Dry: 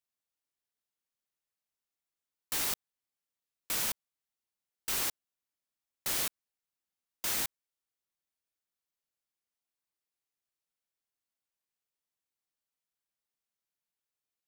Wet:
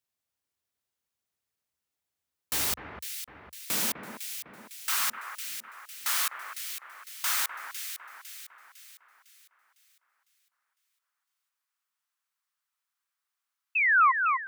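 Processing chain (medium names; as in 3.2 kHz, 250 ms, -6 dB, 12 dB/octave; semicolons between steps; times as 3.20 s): painted sound fall, 13.75–14.12 s, 1–2.7 kHz -30 dBFS; high-pass sweep 72 Hz -> 1.2 kHz, 3.33–4.68 s; echo whose repeats swap between lows and highs 252 ms, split 2 kHz, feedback 67%, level -5.5 dB; trim +3.5 dB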